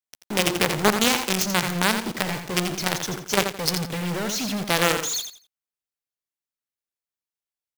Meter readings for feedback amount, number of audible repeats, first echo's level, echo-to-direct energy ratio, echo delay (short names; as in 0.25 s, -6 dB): 24%, 3, -8.0 dB, -7.5 dB, 85 ms